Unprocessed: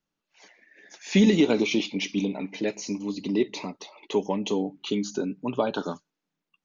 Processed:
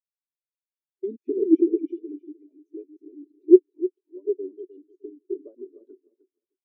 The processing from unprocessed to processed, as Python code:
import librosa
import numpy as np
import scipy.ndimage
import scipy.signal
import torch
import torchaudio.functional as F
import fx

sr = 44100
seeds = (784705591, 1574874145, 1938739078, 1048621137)

p1 = fx.block_reorder(x, sr, ms=129.0, group=2)
p2 = fx.brickwall_highpass(p1, sr, low_hz=220.0)
p3 = fx.peak_eq(p2, sr, hz=360.0, db=15.0, octaves=0.46)
p4 = p3 + fx.echo_feedback(p3, sr, ms=306, feedback_pct=37, wet_db=-6, dry=0)
p5 = fx.dynamic_eq(p4, sr, hz=810.0, q=3.6, threshold_db=-41.0, ratio=4.0, max_db=-7)
y = fx.spectral_expand(p5, sr, expansion=2.5)